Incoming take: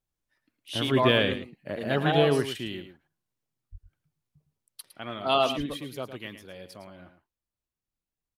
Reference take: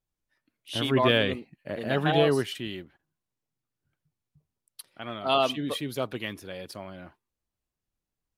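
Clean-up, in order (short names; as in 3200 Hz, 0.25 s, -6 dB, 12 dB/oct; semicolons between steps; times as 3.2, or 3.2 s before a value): 3.71–3.83 HPF 140 Hz 24 dB/oct; 5.57–5.69 HPF 140 Hz 24 dB/oct; inverse comb 0.109 s -11 dB; 5.66 gain correction +5.5 dB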